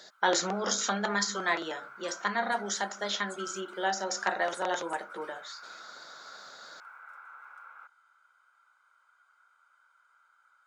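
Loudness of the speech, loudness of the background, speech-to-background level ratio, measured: −31.5 LKFS, −46.5 LKFS, 15.0 dB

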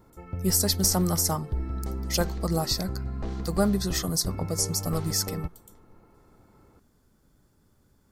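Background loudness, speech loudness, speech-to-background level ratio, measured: −35.0 LKFS, −27.0 LKFS, 8.0 dB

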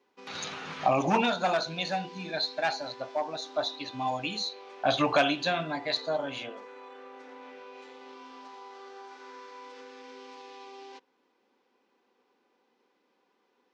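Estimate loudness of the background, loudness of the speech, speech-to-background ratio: −47.5 LKFS, −30.0 LKFS, 17.5 dB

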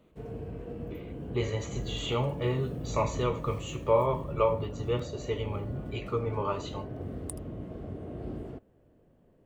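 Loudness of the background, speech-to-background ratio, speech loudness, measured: −40.0 LKFS, 8.0 dB, −32.0 LKFS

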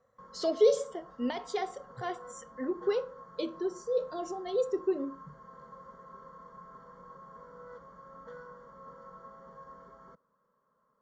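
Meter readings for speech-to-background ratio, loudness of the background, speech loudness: 18.0 dB, −50.5 LKFS, −32.5 LKFS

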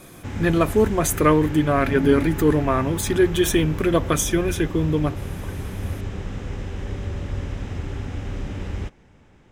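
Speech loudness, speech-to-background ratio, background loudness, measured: −20.5 LKFS, 10.5 dB, −31.0 LKFS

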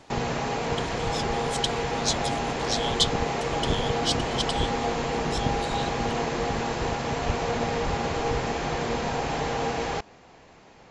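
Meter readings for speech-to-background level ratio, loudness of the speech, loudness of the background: −3.5 dB, −31.5 LKFS, −28.0 LKFS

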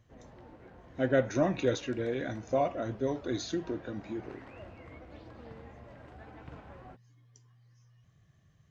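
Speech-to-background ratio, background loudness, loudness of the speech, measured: 19.0 dB, −51.5 LKFS, −32.5 LKFS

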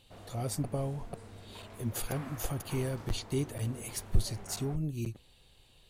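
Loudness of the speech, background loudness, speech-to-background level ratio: −36.0 LKFS, −49.5 LKFS, 13.5 dB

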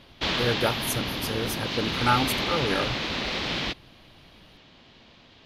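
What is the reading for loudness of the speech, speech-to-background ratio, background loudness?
−28.5 LKFS, −1.0 dB, −27.5 LKFS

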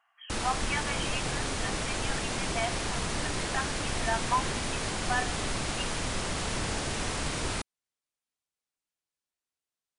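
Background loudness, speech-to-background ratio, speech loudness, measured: −32.0 LKFS, −4.0 dB, −36.0 LKFS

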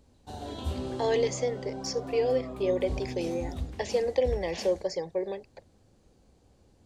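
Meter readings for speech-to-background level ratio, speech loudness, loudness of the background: 8.0 dB, −30.5 LKFS, −38.5 LKFS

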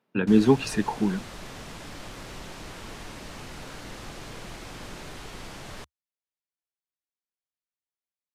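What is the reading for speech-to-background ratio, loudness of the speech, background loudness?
18.0 dB, −23.0 LKFS, −41.0 LKFS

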